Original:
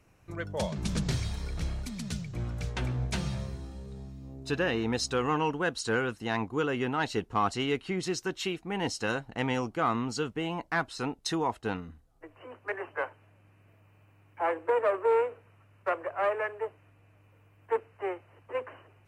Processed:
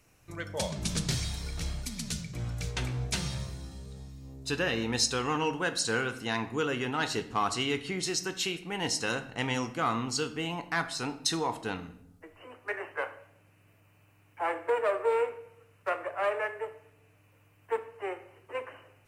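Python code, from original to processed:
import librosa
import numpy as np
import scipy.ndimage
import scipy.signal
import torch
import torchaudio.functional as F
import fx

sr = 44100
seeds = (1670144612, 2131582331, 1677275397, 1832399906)

y = fx.high_shelf(x, sr, hz=2900.0, db=11.5)
y = fx.room_shoebox(y, sr, seeds[0], volume_m3=170.0, walls='mixed', distance_m=0.34)
y = y * librosa.db_to_amplitude(-3.0)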